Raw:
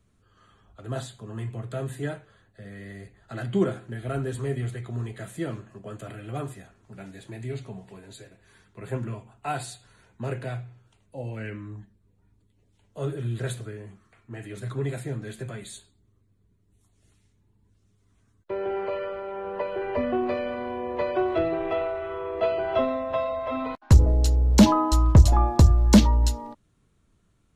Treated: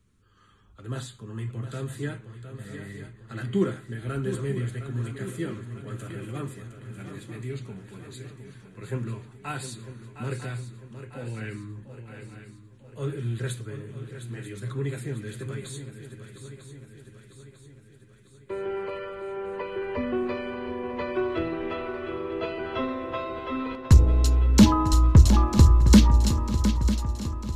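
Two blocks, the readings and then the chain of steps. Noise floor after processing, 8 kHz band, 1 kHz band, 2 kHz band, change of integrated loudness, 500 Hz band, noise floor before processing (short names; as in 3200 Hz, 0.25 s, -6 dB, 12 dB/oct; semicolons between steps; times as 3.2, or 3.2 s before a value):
-53 dBFS, +0.5 dB, -3.5 dB, +0.5 dB, 0.0 dB, -3.5 dB, -66 dBFS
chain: bell 680 Hz -13.5 dB 0.5 oct; on a send: swung echo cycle 0.948 s, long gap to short 3:1, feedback 52%, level -10 dB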